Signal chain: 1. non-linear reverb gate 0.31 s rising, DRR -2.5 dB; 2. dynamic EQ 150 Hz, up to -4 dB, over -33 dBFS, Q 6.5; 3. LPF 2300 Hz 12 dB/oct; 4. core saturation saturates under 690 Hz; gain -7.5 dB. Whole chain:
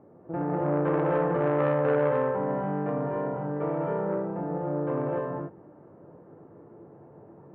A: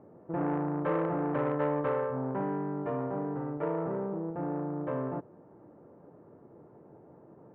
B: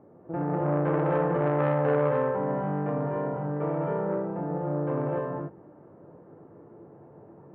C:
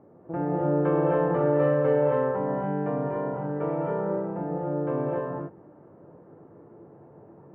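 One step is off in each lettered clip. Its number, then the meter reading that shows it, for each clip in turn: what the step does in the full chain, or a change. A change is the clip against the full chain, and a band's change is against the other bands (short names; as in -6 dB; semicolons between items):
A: 1, loudness change -5.0 LU; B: 2, 125 Hz band +3.0 dB; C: 4, 2 kHz band -3.0 dB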